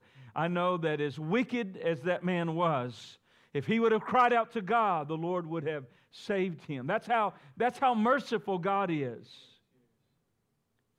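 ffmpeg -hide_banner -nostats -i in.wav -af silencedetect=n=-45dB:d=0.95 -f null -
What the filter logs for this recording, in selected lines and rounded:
silence_start: 9.38
silence_end: 10.98 | silence_duration: 1.61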